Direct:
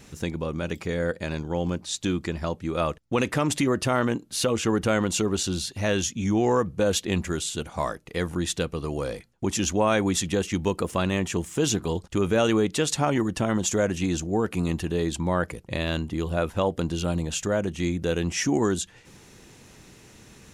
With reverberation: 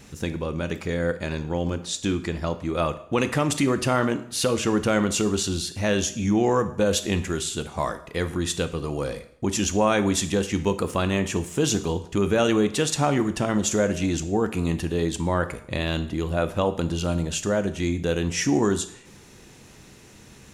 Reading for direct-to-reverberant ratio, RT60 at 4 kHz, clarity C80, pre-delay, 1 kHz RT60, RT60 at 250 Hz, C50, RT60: 10.0 dB, 0.60 s, 16.5 dB, 7 ms, 0.65 s, 0.75 s, 14.0 dB, 0.65 s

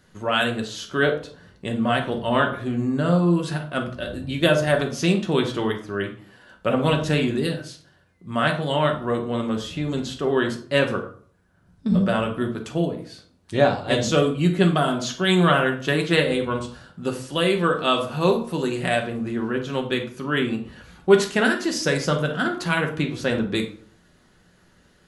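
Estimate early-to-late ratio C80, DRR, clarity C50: 14.0 dB, 2.0 dB, 9.0 dB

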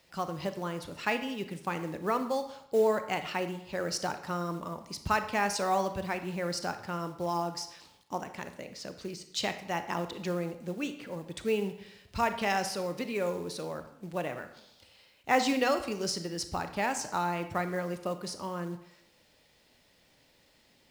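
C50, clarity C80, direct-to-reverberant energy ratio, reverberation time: 10.5 dB, 13.0 dB, 9.0 dB, 0.80 s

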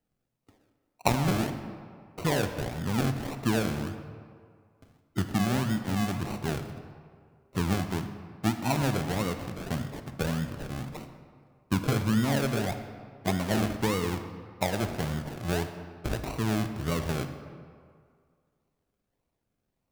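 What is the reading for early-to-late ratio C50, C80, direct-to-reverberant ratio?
8.5 dB, 10.0 dB, 8.0 dB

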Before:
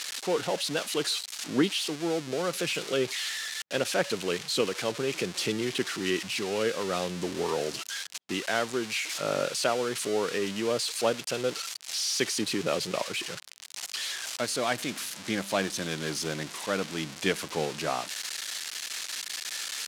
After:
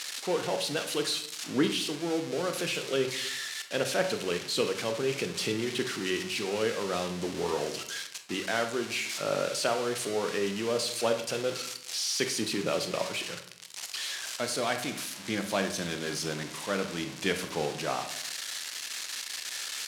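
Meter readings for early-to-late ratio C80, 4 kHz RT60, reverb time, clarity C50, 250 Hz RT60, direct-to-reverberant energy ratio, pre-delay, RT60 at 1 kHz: 12.5 dB, 0.50 s, 0.75 s, 9.0 dB, 0.85 s, 6.0 dB, 23 ms, 0.70 s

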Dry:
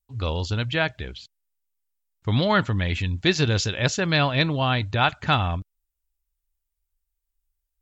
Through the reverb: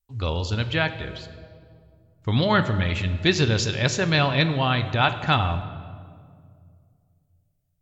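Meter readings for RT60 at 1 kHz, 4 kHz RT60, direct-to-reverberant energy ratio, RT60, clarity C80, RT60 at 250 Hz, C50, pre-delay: 1.9 s, 1.3 s, 9.0 dB, 2.2 s, 12.5 dB, 2.6 s, 11.5 dB, 5 ms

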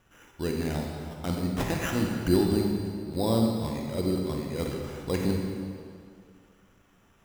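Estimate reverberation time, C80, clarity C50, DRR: 2.2 s, 3.0 dB, 2.0 dB, 0.5 dB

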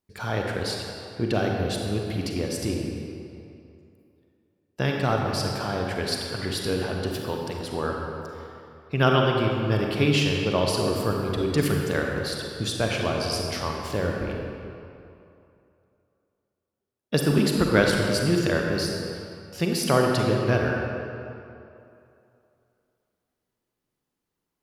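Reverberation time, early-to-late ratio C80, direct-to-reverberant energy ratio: 2.7 s, 2.0 dB, 0.0 dB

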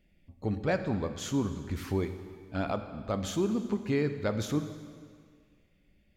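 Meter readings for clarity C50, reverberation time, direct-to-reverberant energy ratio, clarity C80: 10.0 dB, 1.9 s, 8.5 dB, 11.0 dB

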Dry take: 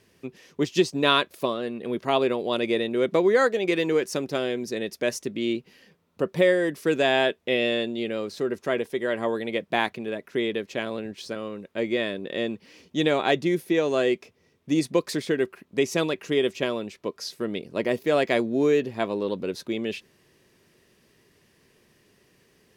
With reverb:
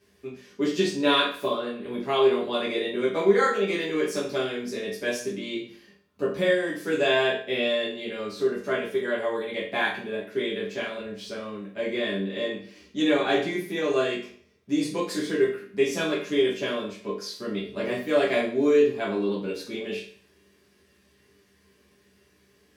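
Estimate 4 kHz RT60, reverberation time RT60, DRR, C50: 0.45 s, 0.50 s, -9.0 dB, 5.0 dB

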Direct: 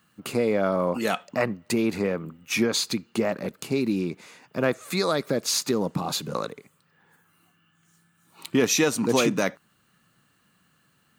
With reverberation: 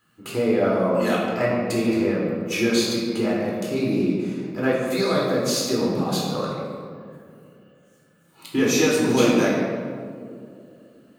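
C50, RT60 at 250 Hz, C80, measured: -0.5 dB, 3.2 s, 1.5 dB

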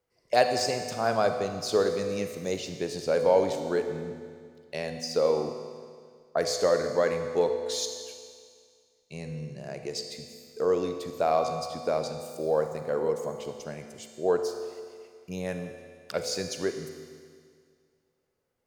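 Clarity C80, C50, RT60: 7.5 dB, 6.5 dB, 2.0 s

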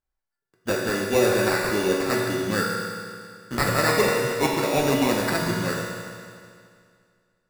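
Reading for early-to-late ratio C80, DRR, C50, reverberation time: 1.5 dB, -3.5 dB, 0.0 dB, 2.2 s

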